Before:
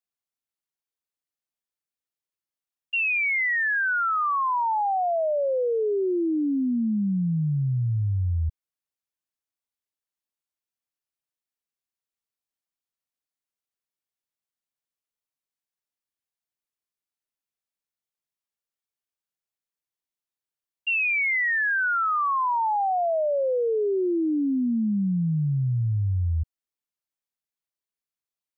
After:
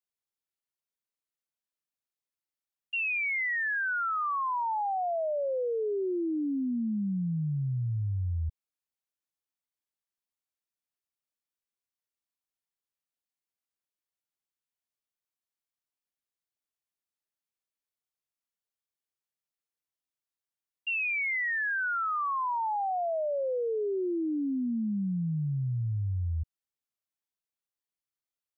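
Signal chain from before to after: dynamic EQ 580 Hz, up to +5 dB, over -38 dBFS, Q 1.8; limiter -23 dBFS, peak gain reduction 7.5 dB; gain -4 dB

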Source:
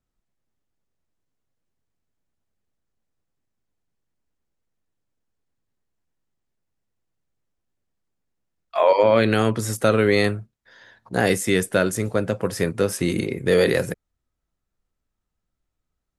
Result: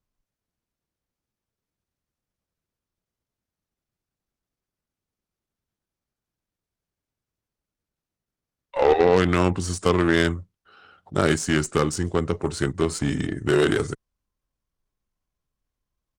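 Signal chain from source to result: added harmonics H 2 -42 dB, 3 -33 dB, 6 -16 dB, 8 -17 dB, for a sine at -4 dBFS; pitch shift -3.5 st; gain -1 dB

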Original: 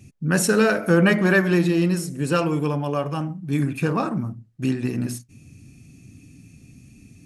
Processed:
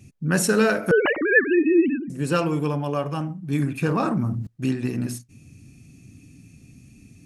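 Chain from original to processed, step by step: 0.91–2.1 sine-wave speech; 3.85–4.47 fast leveller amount 70%; gain -1 dB

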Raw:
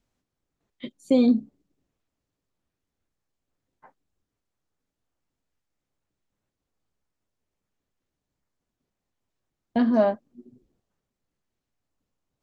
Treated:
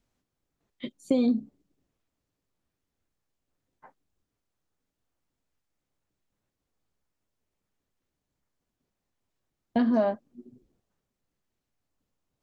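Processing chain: compressor, threshold -20 dBFS, peak gain reduction 6 dB

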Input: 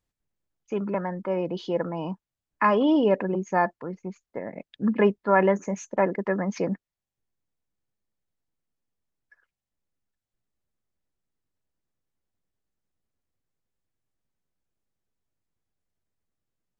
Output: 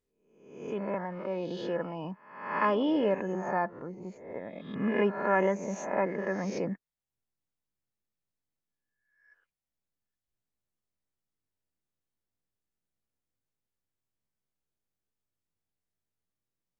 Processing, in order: spectral swells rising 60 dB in 0.75 s; 3.33–4.02 high shelf 4900 Hz -11.5 dB; gain -7.5 dB

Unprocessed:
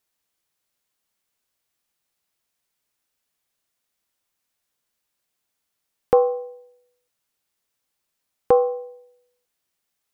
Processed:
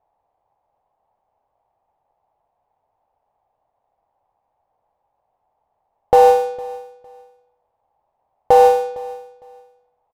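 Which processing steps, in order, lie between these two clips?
half-waves squared off; low-pass opened by the level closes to 1700 Hz, open at -17.5 dBFS; EQ curve 110 Hz 0 dB, 200 Hz -8 dB, 350 Hz -6 dB, 820 Hz +15 dB, 1400 Hz -12 dB; limiter -10 dBFS, peak gain reduction 12.5 dB; feedback echo 0.457 s, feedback 21%, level -20.5 dB; gain +7.5 dB

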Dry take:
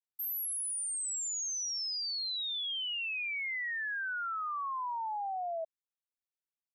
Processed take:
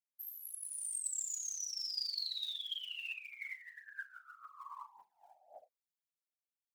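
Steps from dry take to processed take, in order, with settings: bell 11000 Hz -6 dB 0.43 oct; resonator 540 Hz, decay 0.38 s, mix 90%; phaser 1.8 Hz, delay 1.4 ms, feedback 73%; tilt +3.5 dB/oct; doubler 37 ms -10 dB; rotary speaker horn 0.8 Hz; whisperiser; 1.11–3.14 fast leveller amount 50%; gain -1 dB

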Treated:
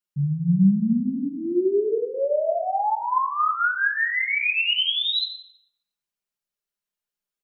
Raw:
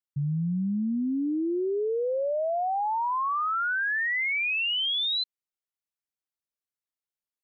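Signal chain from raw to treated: comb 4.9 ms, depth 78%; shoebox room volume 340 m³, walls mixed, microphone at 0.91 m

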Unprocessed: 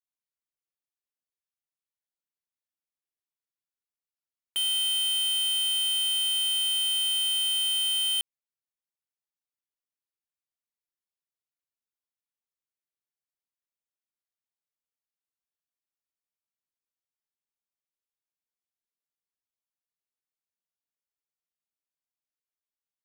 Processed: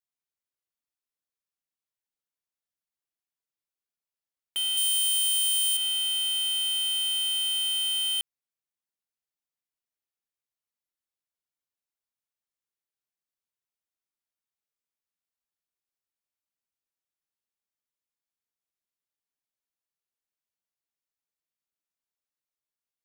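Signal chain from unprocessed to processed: 4.77–5.77 tone controls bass -11 dB, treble +11 dB; limiter -16 dBFS, peak gain reduction 3 dB; gain -1 dB

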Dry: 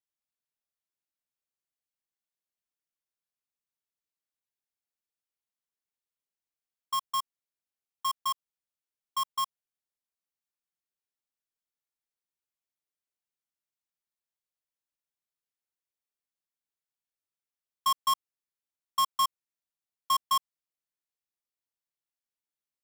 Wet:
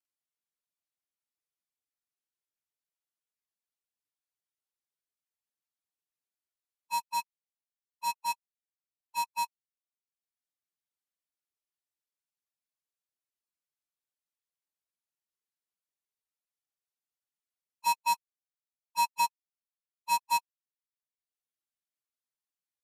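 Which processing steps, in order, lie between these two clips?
inharmonic rescaling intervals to 91%; reverb removal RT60 1 s

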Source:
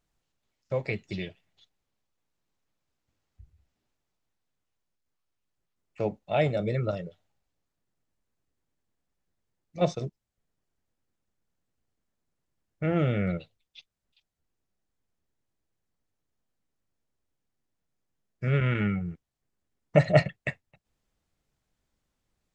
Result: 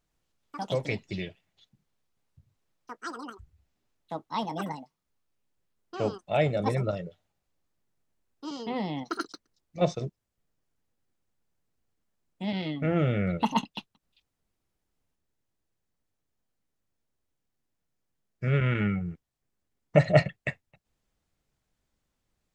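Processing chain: echoes that change speed 0.11 s, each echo +7 st, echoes 2, each echo -6 dB

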